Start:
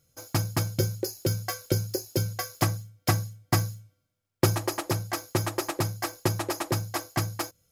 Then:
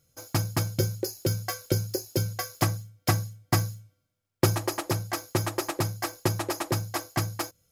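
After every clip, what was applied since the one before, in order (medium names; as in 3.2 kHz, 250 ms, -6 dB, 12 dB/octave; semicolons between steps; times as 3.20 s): no audible change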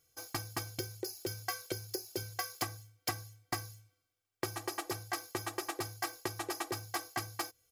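comb 2.6 ms, depth 75%; compression 4:1, threshold -28 dBFS, peak gain reduction 12.5 dB; bass shelf 380 Hz -10 dB; trim -3 dB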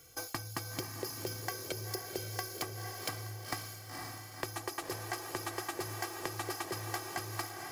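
compression, threshold -41 dBFS, peak gain reduction 11.5 dB; echo that smears into a reverb 503 ms, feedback 46%, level -5 dB; three bands compressed up and down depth 40%; trim +5.5 dB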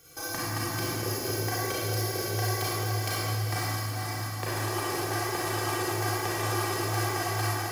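reverberation RT60 2.2 s, pre-delay 29 ms, DRR -9 dB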